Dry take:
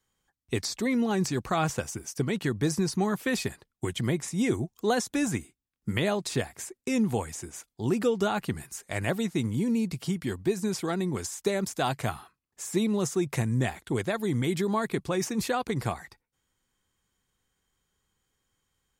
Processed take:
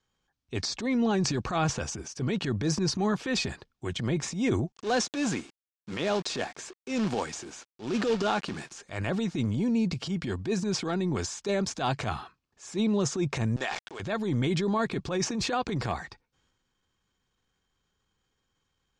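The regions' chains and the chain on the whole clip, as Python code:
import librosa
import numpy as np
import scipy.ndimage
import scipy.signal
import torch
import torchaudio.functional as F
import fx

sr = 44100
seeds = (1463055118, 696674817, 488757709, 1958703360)

y = fx.chain(x, sr, fx.highpass(hz=220.0, slope=12),
    fx.quant_companded(bits=4), at=(4.72, 8.79))
y = fx.chain(y, sr, fx.bandpass_edges(low_hz=710.0, high_hz=7900.0),
    fx.sample_gate(floor_db=-43.5),
    fx.sustainer(db_per_s=93.0), at=(13.56, 14.0))
y = scipy.signal.sosfilt(scipy.signal.butter(4, 6200.0, 'lowpass', fs=sr, output='sos'), y)
y = fx.notch(y, sr, hz=2000.0, q=11.0)
y = fx.transient(y, sr, attack_db=-9, sustain_db=6)
y = F.gain(torch.from_numpy(y), 1.0).numpy()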